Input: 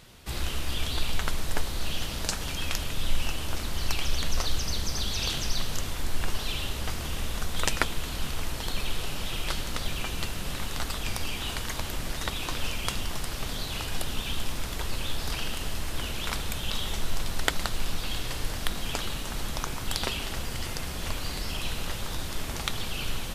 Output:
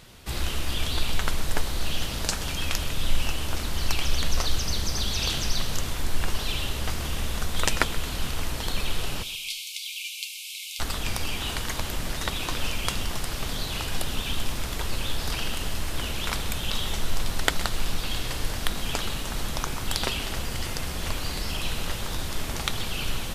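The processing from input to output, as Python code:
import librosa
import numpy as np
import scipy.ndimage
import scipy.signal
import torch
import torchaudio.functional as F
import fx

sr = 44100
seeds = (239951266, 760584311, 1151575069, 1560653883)

y = fx.brickwall_highpass(x, sr, low_hz=2100.0, at=(9.22, 10.79), fade=0.02)
y = fx.echo_feedback(y, sr, ms=129, feedback_pct=33, wet_db=-17.0)
y = y * librosa.db_to_amplitude(2.5)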